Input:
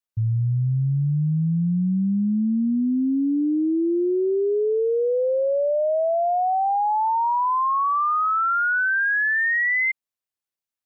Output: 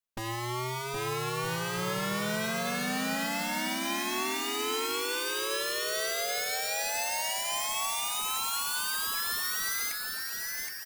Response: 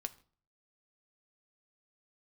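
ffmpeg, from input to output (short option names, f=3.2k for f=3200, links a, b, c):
-filter_complex "[0:a]aeval=exprs='(mod(22.4*val(0)+1,2)-1)/22.4':c=same,aecho=1:1:770|1270|1596|1807|1945:0.631|0.398|0.251|0.158|0.1[a];[1:a]atrim=start_sample=2205[b];[a][b]afir=irnorm=-1:irlink=0"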